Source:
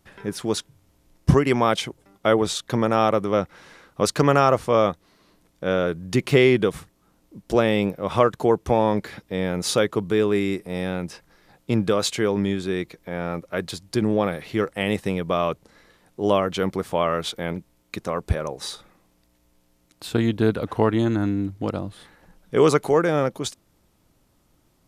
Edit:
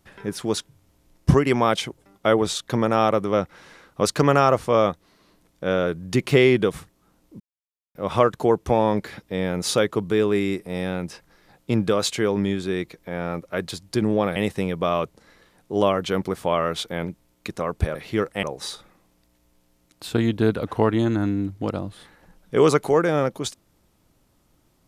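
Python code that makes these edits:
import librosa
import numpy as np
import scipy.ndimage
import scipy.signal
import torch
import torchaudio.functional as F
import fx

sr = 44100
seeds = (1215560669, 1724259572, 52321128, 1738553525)

y = fx.edit(x, sr, fx.silence(start_s=7.4, length_s=0.55),
    fx.move(start_s=14.36, length_s=0.48, to_s=18.43), tone=tone)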